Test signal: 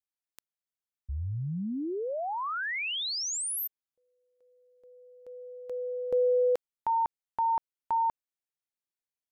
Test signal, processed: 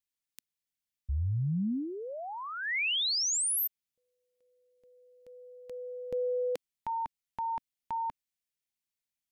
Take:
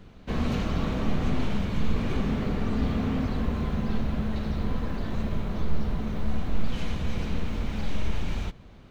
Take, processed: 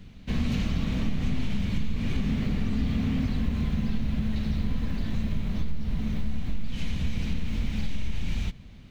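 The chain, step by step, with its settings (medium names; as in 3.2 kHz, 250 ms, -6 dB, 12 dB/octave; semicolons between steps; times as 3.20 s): high-order bell 710 Hz -9.5 dB 2.5 oct; compression, threshold -24 dBFS; trim +3 dB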